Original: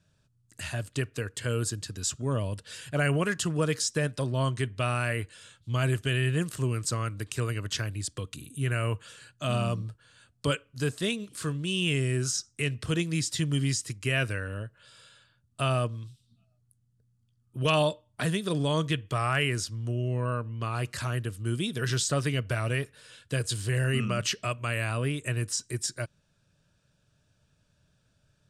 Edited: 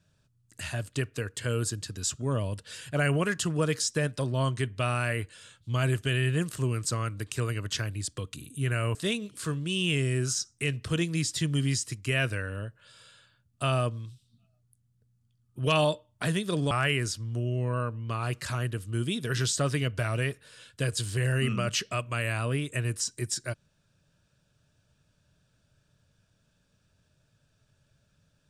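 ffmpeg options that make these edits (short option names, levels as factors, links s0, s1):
-filter_complex "[0:a]asplit=3[s0][s1][s2];[s0]atrim=end=8.952[s3];[s1]atrim=start=10.928:end=18.692[s4];[s2]atrim=start=19.228[s5];[s3][s4]acrossfade=d=0.004:c1=hsin:c2=hsin[s6];[s6][s5]acrossfade=d=0.004:c1=hsin:c2=hsin"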